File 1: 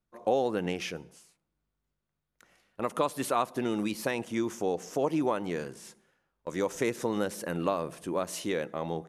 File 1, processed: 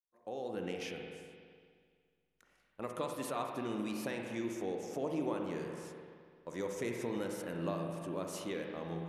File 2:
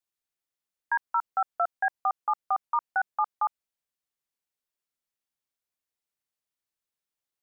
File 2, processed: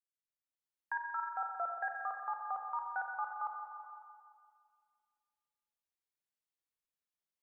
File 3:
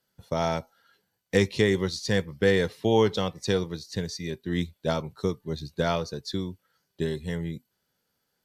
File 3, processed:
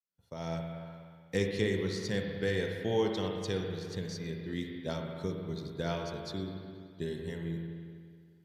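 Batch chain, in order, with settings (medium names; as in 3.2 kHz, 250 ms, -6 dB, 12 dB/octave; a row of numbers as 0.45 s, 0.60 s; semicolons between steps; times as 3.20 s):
fade-in on the opening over 0.71 s; spring tank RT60 2 s, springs 42/60 ms, chirp 60 ms, DRR 2 dB; dynamic bell 1 kHz, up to -4 dB, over -36 dBFS, Q 0.87; trim -8.5 dB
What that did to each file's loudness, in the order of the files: -8.0 LU, -10.0 LU, -7.5 LU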